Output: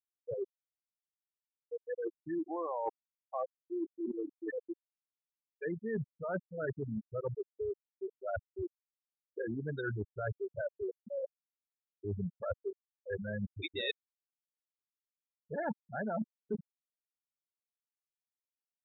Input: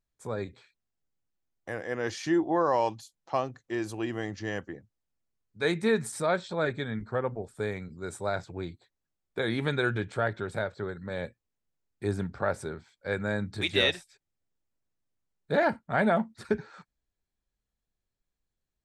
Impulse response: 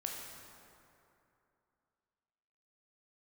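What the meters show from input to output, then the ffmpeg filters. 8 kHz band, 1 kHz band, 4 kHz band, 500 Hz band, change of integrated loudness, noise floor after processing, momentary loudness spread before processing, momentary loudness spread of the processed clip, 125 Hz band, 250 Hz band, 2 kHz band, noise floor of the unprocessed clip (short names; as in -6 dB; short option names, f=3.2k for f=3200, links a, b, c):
under -35 dB, -11.5 dB, -12.5 dB, -8.0 dB, -9.5 dB, under -85 dBFS, 14 LU, 6 LU, -7.5 dB, -8.5 dB, -12.5 dB, under -85 dBFS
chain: -af "afftfilt=real='re*gte(hypot(re,im),0.141)':imag='im*gte(hypot(re,im),0.141)':win_size=1024:overlap=0.75,areverse,acompressor=threshold=-40dB:ratio=8,areverse,volume=5.5dB"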